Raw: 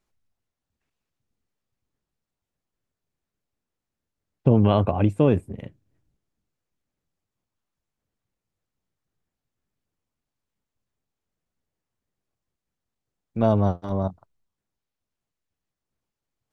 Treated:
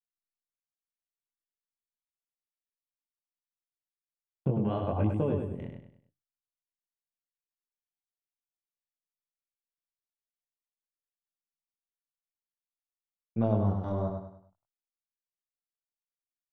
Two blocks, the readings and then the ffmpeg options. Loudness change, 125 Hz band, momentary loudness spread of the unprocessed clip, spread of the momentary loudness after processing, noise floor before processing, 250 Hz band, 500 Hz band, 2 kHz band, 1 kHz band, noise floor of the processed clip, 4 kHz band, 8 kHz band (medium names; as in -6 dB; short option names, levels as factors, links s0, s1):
-9.0 dB, -7.5 dB, 15 LU, 14 LU, under -85 dBFS, -8.0 dB, -9.0 dB, -11.0 dB, -9.0 dB, under -85 dBFS, under -15 dB, no reading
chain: -af "agate=range=0.02:threshold=0.00316:ratio=16:detection=peak,highshelf=f=2700:g=-11,acompressor=threshold=0.0794:ratio=6,flanger=delay=18:depth=5.7:speed=0.97,aecho=1:1:100|200|300|400:0.562|0.202|0.0729|0.0262"